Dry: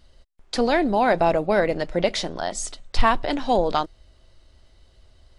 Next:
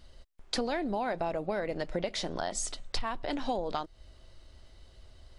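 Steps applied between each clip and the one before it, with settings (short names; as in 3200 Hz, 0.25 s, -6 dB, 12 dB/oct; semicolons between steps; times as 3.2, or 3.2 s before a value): compressor 8:1, threshold -29 dBFS, peak gain reduction 18.5 dB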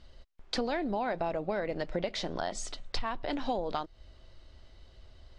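LPF 5500 Hz 12 dB/oct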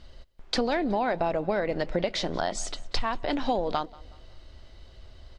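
feedback echo 0.185 s, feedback 40%, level -23 dB; gain +5.5 dB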